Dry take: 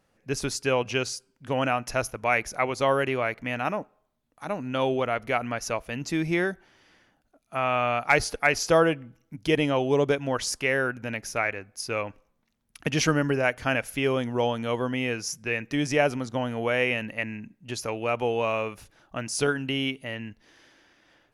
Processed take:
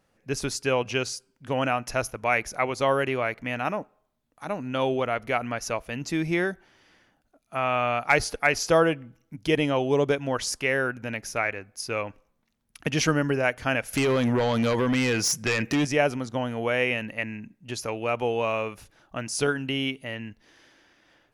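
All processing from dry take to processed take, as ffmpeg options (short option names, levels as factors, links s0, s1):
-filter_complex "[0:a]asettb=1/sr,asplit=3[s0][s1][s2];[s0]atrim=end=13.934[s3];[s1]atrim=start=13.93:end=15.85,asetpts=PTS-STARTPTS,afade=t=in:d=0.004:c=qsin,afade=t=out:st=1.916:d=0.004:c=qsin,highpass=47,acompressor=threshold=0.0501:ratio=8:attack=3.2:release=140:knee=1:detection=peak,aeval=exprs='0.112*sin(PI/2*2.24*val(0)/0.112)':c=same[s4];[s2]atrim=start=15.846[s5];[s3][s4]acrossfade=d=0.004:c1=hsin:c2=qsin[s6];[s6][s5]acrossfade=d=0.004:c1=qsin:c2=hsin"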